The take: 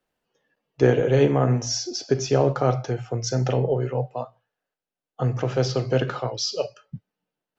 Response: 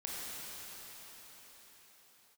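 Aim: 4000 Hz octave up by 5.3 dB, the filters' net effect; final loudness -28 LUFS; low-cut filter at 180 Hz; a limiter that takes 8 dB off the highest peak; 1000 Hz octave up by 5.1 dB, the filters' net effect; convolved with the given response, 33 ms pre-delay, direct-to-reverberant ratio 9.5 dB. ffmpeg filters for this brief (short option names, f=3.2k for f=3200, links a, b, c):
-filter_complex "[0:a]highpass=180,equalizer=f=1k:t=o:g=7,equalizer=f=4k:t=o:g=7.5,alimiter=limit=-11.5dB:level=0:latency=1,asplit=2[a][b];[1:a]atrim=start_sample=2205,adelay=33[c];[b][c]afir=irnorm=-1:irlink=0,volume=-12dB[d];[a][d]amix=inputs=2:normalize=0,volume=-4dB"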